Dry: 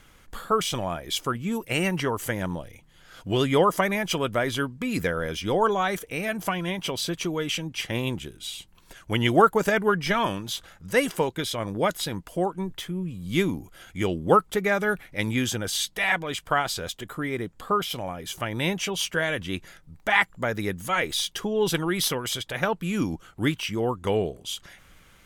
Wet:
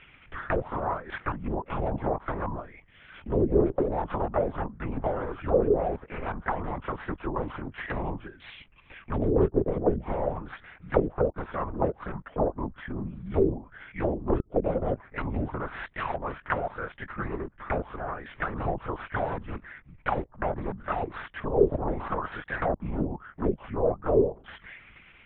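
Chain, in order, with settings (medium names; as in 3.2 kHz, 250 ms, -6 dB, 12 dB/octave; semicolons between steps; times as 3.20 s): self-modulated delay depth 0.86 ms; short-mantissa float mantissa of 4-bit; LPC vocoder at 8 kHz whisper; touch-sensitive low-pass 390–2600 Hz down, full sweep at -19 dBFS; trim -3.5 dB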